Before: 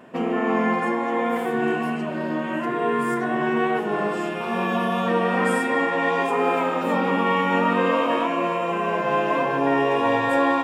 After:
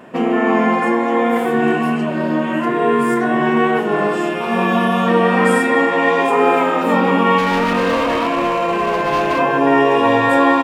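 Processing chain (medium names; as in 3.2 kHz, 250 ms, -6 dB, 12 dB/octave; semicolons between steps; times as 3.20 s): 7.38–9.39 s: overload inside the chain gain 20.5 dB; doubling 26 ms -10.5 dB; trim +6.5 dB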